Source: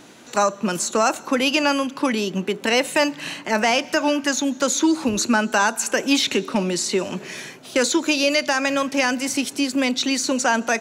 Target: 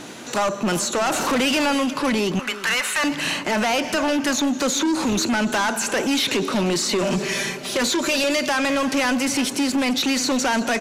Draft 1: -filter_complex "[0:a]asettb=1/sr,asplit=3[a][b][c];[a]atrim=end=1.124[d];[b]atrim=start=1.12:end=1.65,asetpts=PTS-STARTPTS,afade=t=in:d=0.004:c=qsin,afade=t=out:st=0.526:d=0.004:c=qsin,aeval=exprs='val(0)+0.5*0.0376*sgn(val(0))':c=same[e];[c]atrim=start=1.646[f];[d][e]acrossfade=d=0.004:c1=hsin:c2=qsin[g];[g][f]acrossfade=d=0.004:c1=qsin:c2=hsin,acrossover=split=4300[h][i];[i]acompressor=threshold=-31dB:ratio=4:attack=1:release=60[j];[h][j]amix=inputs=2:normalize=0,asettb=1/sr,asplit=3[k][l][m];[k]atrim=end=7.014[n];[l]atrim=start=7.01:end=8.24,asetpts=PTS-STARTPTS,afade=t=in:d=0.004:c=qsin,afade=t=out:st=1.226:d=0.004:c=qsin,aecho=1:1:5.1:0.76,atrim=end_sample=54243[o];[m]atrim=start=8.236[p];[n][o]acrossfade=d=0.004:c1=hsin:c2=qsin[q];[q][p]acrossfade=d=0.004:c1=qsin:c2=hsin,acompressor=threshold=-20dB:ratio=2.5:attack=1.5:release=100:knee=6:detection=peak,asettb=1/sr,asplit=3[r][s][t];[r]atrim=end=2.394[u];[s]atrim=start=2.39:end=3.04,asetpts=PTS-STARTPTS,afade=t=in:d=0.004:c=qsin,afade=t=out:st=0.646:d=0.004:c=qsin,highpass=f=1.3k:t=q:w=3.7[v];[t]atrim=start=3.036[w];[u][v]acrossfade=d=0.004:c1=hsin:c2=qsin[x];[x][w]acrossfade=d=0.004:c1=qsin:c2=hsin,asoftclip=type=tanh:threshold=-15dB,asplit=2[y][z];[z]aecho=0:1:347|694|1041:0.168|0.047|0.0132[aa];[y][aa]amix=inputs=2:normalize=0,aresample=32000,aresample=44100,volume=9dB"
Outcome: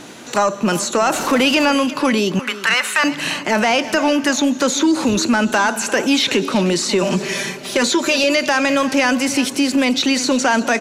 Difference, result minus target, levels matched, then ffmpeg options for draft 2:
soft clip: distortion -13 dB
-filter_complex "[0:a]asettb=1/sr,asplit=3[a][b][c];[a]atrim=end=1.124[d];[b]atrim=start=1.12:end=1.65,asetpts=PTS-STARTPTS,afade=t=in:d=0.004:c=qsin,afade=t=out:st=0.526:d=0.004:c=qsin,aeval=exprs='val(0)+0.5*0.0376*sgn(val(0))':c=same[e];[c]atrim=start=1.646[f];[d][e]acrossfade=d=0.004:c1=hsin:c2=qsin[g];[g][f]acrossfade=d=0.004:c1=qsin:c2=hsin,acrossover=split=4300[h][i];[i]acompressor=threshold=-31dB:ratio=4:attack=1:release=60[j];[h][j]amix=inputs=2:normalize=0,asettb=1/sr,asplit=3[k][l][m];[k]atrim=end=7.014[n];[l]atrim=start=7.01:end=8.24,asetpts=PTS-STARTPTS,afade=t=in:d=0.004:c=qsin,afade=t=out:st=1.226:d=0.004:c=qsin,aecho=1:1:5.1:0.76,atrim=end_sample=54243[o];[m]atrim=start=8.236[p];[n][o]acrossfade=d=0.004:c1=hsin:c2=qsin[q];[q][p]acrossfade=d=0.004:c1=qsin:c2=hsin,acompressor=threshold=-20dB:ratio=2.5:attack=1.5:release=100:knee=6:detection=peak,asettb=1/sr,asplit=3[r][s][t];[r]atrim=end=2.394[u];[s]atrim=start=2.39:end=3.04,asetpts=PTS-STARTPTS,afade=t=in:d=0.004:c=qsin,afade=t=out:st=0.646:d=0.004:c=qsin,highpass=f=1.3k:t=q:w=3.7[v];[t]atrim=start=3.036[w];[u][v]acrossfade=d=0.004:c1=hsin:c2=qsin[x];[x][w]acrossfade=d=0.004:c1=qsin:c2=hsin,asoftclip=type=tanh:threshold=-26.5dB,asplit=2[y][z];[z]aecho=0:1:347|694|1041:0.168|0.047|0.0132[aa];[y][aa]amix=inputs=2:normalize=0,aresample=32000,aresample=44100,volume=9dB"

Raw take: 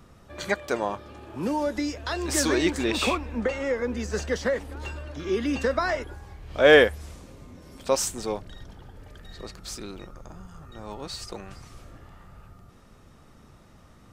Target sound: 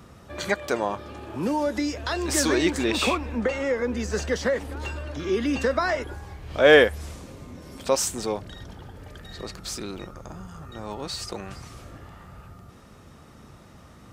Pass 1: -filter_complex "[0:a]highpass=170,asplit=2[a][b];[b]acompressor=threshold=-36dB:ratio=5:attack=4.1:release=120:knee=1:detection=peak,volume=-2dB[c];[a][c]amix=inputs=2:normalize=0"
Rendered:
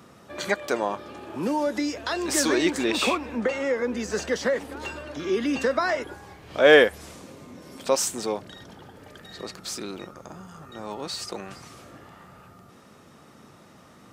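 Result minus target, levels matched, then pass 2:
125 Hz band -7.5 dB
-filter_complex "[0:a]highpass=52,asplit=2[a][b];[b]acompressor=threshold=-36dB:ratio=5:attack=4.1:release=120:knee=1:detection=peak,volume=-2dB[c];[a][c]amix=inputs=2:normalize=0"

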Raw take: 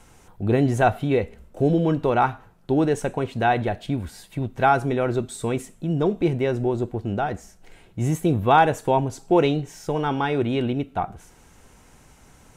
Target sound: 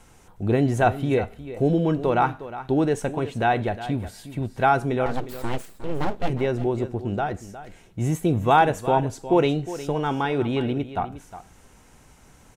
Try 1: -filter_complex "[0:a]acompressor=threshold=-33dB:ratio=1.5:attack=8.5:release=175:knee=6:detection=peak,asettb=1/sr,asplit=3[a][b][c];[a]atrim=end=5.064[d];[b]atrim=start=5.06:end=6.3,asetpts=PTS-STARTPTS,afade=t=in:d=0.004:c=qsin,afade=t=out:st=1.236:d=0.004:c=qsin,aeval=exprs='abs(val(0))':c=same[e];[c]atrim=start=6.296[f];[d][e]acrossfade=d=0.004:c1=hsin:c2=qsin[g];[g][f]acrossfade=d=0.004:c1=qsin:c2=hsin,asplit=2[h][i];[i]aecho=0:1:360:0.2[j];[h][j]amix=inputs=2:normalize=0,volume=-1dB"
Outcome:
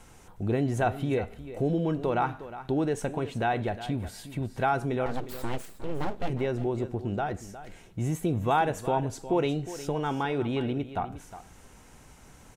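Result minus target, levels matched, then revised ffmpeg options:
compressor: peak gain reduction +8 dB
-filter_complex "[0:a]asettb=1/sr,asplit=3[a][b][c];[a]atrim=end=5.064[d];[b]atrim=start=5.06:end=6.3,asetpts=PTS-STARTPTS,afade=t=in:d=0.004:c=qsin,afade=t=out:st=1.236:d=0.004:c=qsin,aeval=exprs='abs(val(0))':c=same[e];[c]atrim=start=6.296[f];[d][e]acrossfade=d=0.004:c1=hsin:c2=qsin[g];[g][f]acrossfade=d=0.004:c1=qsin:c2=hsin,asplit=2[h][i];[i]aecho=0:1:360:0.2[j];[h][j]amix=inputs=2:normalize=0,volume=-1dB"

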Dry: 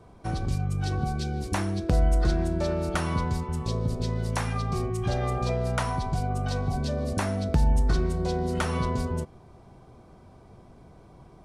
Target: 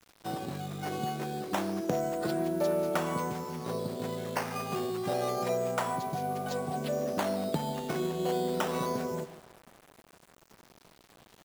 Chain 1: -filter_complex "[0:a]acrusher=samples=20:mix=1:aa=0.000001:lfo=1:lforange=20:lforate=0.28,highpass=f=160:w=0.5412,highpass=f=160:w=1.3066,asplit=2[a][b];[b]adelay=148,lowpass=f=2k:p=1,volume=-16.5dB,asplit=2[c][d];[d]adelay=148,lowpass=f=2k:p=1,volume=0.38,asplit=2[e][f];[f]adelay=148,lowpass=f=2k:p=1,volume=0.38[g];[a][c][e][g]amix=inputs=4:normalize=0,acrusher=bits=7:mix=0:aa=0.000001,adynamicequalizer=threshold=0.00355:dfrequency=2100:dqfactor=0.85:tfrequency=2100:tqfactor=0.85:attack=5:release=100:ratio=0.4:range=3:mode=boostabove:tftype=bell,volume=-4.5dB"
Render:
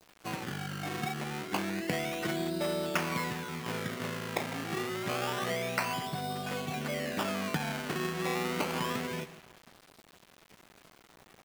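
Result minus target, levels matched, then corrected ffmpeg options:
2000 Hz band +7.5 dB; decimation with a swept rate: distortion +6 dB
-filter_complex "[0:a]acrusher=samples=8:mix=1:aa=0.000001:lfo=1:lforange=8:lforate=0.28,highpass=f=160:w=0.5412,highpass=f=160:w=1.3066,asplit=2[a][b];[b]adelay=148,lowpass=f=2k:p=1,volume=-16.5dB,asplit=2[c][d];[d]adelay=148,lowpass=f=2k:p=1,volume=0.38,asplit=2[e][f];[f]adelay=148,lowpass=f=2k:p=1,volume=0.38[g];[a][c][e][g]amix=inputs=4:normalize=0,acrusher=bits=7:mix=0:aa=0.000001,adynamicequalizer=threshold=0.00355:dfrequency=590:dqfactor=0.85:tfrequency=590:tqfactor=0.85:attack=5:release=100:ratio=0.4:range=3:mode=boostabove:tftype=bell,volume=-4.5dB"

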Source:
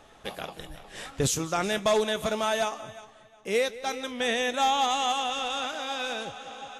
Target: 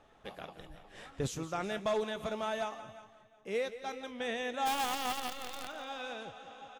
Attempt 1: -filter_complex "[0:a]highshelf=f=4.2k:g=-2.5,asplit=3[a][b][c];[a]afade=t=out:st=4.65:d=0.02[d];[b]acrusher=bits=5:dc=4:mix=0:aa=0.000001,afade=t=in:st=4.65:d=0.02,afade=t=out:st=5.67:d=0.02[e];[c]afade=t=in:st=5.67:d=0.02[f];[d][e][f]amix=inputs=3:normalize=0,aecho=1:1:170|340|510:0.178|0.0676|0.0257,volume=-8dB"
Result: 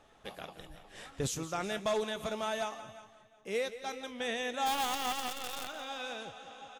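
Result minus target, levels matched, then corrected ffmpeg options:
8000 Hz band +3.0 dB
-filter_complex "[0:a]highshelf=f=4.2k:g=-11,asplit=3[a][b][c];[a]afade=t=out:st=4.65:d=0.02[d];[b]acrusher=bits=5:dc=4:mix=0:aa=0.000001,afade=t=in:st=4.65:d=0.02,afade=t=out:st=5.67:d=0.02[e];[c]afade=t=in:st=5.67:d=0.02[f];[d][e][f]amix=inputs=3:normalize=0,aecho=1:1:170|340|510:0.178|0.0676|0.0257,volume=-8dB"

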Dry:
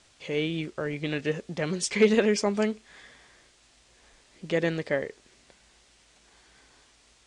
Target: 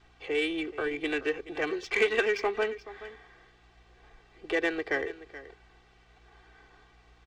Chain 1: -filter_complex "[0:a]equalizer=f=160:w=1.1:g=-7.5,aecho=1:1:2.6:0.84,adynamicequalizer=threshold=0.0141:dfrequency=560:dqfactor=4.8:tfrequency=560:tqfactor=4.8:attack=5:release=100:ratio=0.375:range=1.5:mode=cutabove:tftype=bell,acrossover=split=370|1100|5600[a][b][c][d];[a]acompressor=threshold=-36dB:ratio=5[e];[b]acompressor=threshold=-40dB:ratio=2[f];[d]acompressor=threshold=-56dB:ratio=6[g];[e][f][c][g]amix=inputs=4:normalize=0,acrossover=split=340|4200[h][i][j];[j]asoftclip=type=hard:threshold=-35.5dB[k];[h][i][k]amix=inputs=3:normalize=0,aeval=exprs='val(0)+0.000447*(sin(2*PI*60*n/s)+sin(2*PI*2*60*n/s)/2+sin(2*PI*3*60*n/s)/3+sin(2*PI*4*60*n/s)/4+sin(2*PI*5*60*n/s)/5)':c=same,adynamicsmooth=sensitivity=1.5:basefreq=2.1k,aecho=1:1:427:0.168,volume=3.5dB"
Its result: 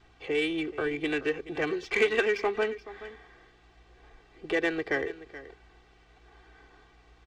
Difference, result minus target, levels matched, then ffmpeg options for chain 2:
hard clip: distortion +14 dB; 125 Hz band +6.0 dB
-filter_complex "[0:a]equalizer=f=160:w=1.1:g=-18.5,aecho=1:1:2.6:0.84,adynamicequalizer=threshold=0.0141:dfrequency=560:dqfactor=4.8:tfrequency=560:tqfactor=4.8:attack=5:release=100:ratio=0.375:range=1.5:mode=cutabove:tftype=bell,acrossover=split=370|1100|5600[a][b][c][d];[a]acompressor=threshold=-36dB:ratio=5[e];[b]acompressor=threshold=-40dB:ratio=2[f];[d]acompressor=threshold=-56dB:ratio=6[g];[e][f][c][g]amix=inputs=4:normalize=0,acrossover=split=340|4200[h][i][j];[j]asoftclip=type=hard:threshold=-28dB[k];[h][i][k]amix=inputs=3:normalize=0,aeval=exprs='val(0)+0.000447*(sin(2*PI*60*n/s)+sin(2*PI*2*60*n/s)/2+sin(2*PI*3*60*n/s)/3+sin(2*PI*4*60*n/s)/4+sin(2*PI*5*60*n/s)/5)':c=same,adynamicsmooth=sensitivity=1.5:basefreq=2.1k,aecho=1:1:427:0.168,volume=3.5dB"

